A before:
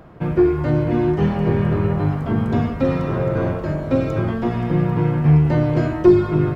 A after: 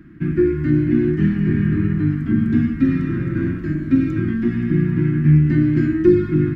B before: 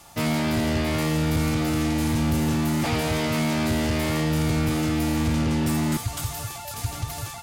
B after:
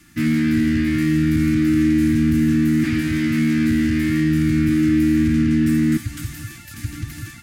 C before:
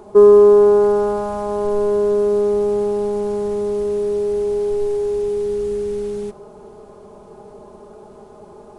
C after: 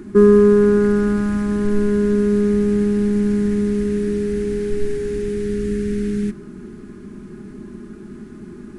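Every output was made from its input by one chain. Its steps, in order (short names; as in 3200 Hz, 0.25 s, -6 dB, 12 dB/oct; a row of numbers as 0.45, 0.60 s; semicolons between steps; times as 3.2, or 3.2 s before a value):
EQ curve 120 Hz 0 dB, 320 Hz +9 dB, 480 Hz -25 dB, 850 Hz -24 dB, 1700 Hz +5 dB, 3300 Hz -6 dB; match loudness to -18 LUFS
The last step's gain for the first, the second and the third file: -1.5, +1.5, +8.0 dB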